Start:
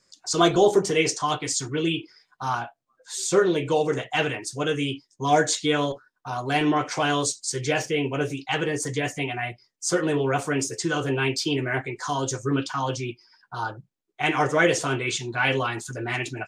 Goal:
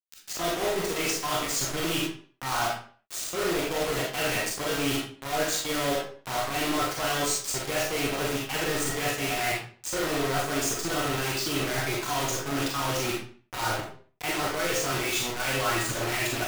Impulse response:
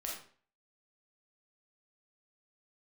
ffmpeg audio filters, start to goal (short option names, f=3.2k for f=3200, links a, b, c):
-filter_complex "[0:a]areverse,acompressor=threshold=-33dB:ratio=16,areverse,acrusher=bits=5:mix=0:aa=0.000001[a];[1:a]atrim=start_sample=2205,afade=t=out:st=0.44:d=0.01,atrim=end_sample=19845[b];[a][b]afir=irnorm=-1:irlink=0,volume=8dB"